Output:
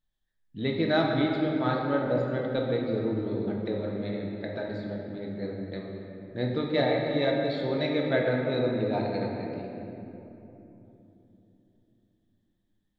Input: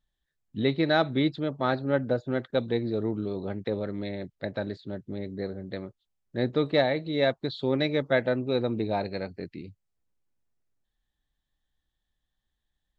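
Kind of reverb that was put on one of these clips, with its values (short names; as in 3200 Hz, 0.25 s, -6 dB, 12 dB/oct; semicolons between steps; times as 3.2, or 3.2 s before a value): shoebox room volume 170 m³, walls hard, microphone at 0.52 m; gain -4.5 dB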